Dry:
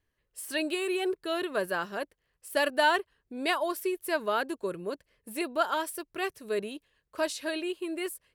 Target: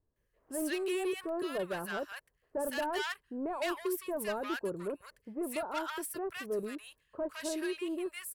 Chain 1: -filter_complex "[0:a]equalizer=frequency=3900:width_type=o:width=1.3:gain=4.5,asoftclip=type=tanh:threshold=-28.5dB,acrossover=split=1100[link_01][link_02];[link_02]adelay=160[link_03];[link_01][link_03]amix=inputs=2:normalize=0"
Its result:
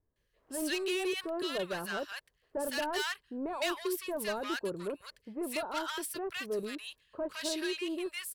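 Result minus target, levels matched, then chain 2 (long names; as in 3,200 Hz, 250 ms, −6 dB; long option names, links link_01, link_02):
4,000 Hz band +5.5 dB
-filter_complex "[0:a]equalizer=frequency=3900:width_type=o:width=1.3:gain=-6.5,asoftclip=type=tanh:threshold=-28.5dB,acrossover=split=1100[link_01][link_02];[link_02]adelay=160[link_03];[link_01][link_03]amix=inputs=2:normalize=0"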